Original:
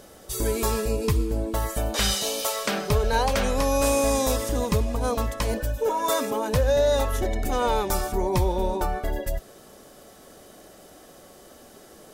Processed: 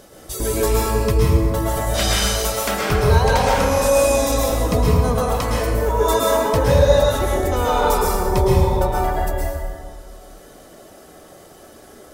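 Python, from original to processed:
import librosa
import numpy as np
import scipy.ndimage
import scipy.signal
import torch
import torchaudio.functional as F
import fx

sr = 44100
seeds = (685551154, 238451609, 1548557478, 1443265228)

y = fx.dereverb_blind(x, sr, rt60_s=1.9)
y = fx.rev_plate(y, sr, seeds[0], rt60_s=2.1, hf_ratio=0.5, predelay_ms=100, drr_db=-5.5)
y = y * 10.0 ** (2.0 / 20.0)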